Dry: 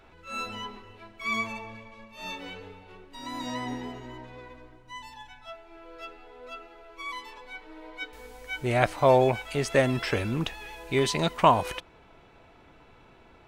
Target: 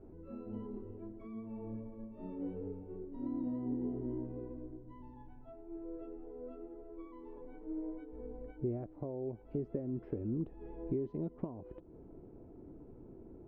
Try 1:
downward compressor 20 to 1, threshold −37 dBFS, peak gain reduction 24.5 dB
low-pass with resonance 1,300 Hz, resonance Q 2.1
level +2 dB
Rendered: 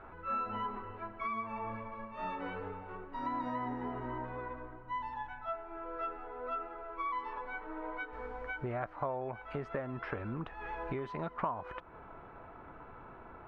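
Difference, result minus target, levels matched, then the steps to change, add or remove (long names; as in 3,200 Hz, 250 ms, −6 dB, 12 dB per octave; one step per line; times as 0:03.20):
1,000 Hz band +18.5 dB
change: low-pass with resonance 340 Hz, resonance Q 2.1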